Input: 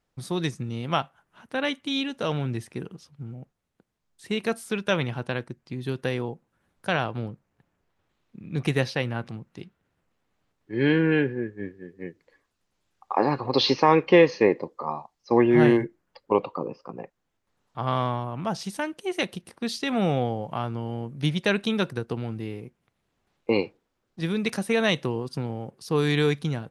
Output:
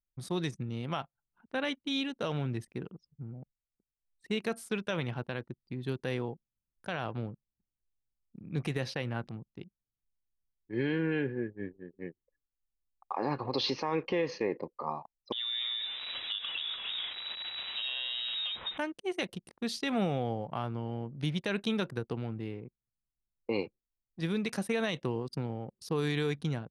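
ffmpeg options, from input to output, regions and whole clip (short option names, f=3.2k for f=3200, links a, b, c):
-filter_complex "[0:a]asettb=1/sr,asplit=3[a][b][c];[a]atrim=end=15.324[d];[b]atrim=start=15.32:end=18.78,asetpts=PTS-STARTPTS,afade=t=in:d=0.004:c=qsin,afade=t=out:st=3.456:d=0.004:c=qsin,aeval=exprs='val(0)+0.5*0.0398*sgn(val(0))':c=same,lowpass=f=3.3k:t=q:w=0.5098,lowpass=f=3.3k:t=q:w=0.6013,lowpass=f=3.3k:t=q:w=0.9,lowpass=f=3.3k:t=q:w=2.563,afreqshift=-3900,acompressor=threshold=-26dB:ratio=12:attack=3.2:release=140:knee=1:detection=peak[e];[c]atrim=start=18.776[f];[d][e]acrossfade=d=0.004:c1=hsin:c2=qsin[g];[g][f]acrossfade=d=0.004:c1=qsin:c2=hsin,anlmdn=0.0631,alimiter=limit=-16.5dB:level=0:latency=1:release=68,volume=-5dB"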